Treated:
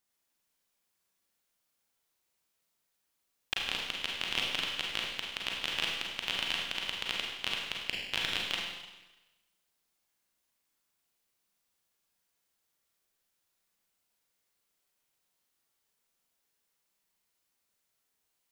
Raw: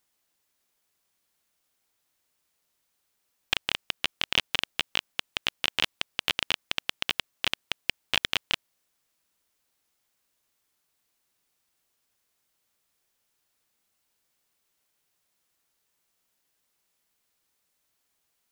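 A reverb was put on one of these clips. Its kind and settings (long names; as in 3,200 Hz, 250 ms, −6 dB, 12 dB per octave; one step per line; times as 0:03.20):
four-comb reverb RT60 1.1 s, combs from 33 ms, DRR −2 dB
level −8 dB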